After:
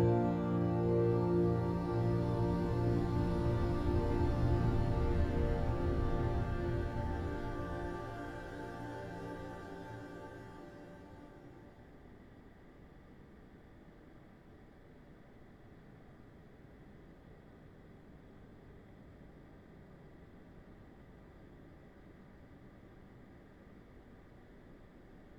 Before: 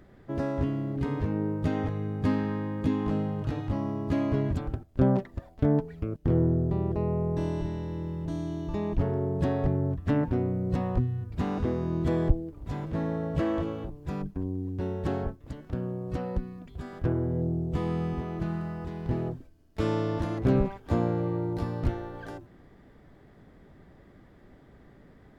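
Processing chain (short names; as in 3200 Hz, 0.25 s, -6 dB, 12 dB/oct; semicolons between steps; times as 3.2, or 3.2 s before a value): Paulstretch 7.8×, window 1.00 s, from 21.21; gain -2.5 dB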